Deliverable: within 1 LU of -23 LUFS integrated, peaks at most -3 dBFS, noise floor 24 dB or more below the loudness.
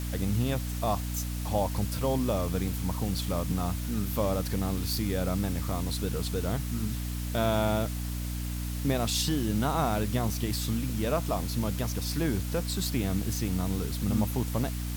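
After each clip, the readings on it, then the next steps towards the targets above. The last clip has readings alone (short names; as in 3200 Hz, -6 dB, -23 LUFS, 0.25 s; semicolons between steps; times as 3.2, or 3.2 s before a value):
hum 60 Hz; harmonics up to 300 Hz; hum level -31 dBFS; noise floor -33 dBFS; noise floor target -54 dBFS; loudness -30.0 LUFS; peak -14.5 dBFS; loudness target -23.0 LUFS
-> notches 60/120/180/240/300 Hz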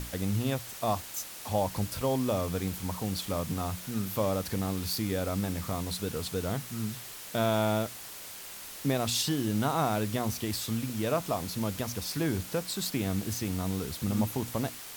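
hum none; noise floor -44 dBFS; noise floor target -56 dBFS
-> denoiser 12 dB, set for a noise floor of -44 dBFS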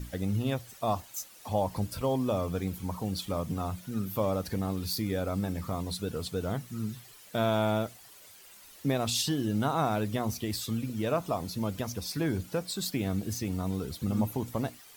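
noise floor -53 dBFS; noise floor target -56 dBFS
-> denoiser 6 dB, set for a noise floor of -53 dBFS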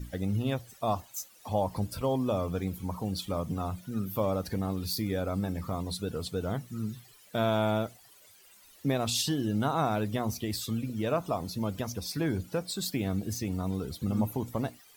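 noise floor -57 dBFS; loudness -32.0 LUFS; peak -16.5 dBFS; loudness target -23.0 LUFS
-> gain +9 dB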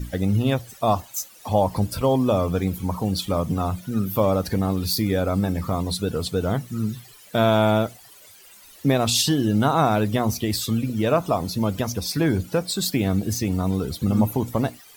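loudness -23.0 LUFS; peak -7.5 dBFS; noise floor -48 dBFS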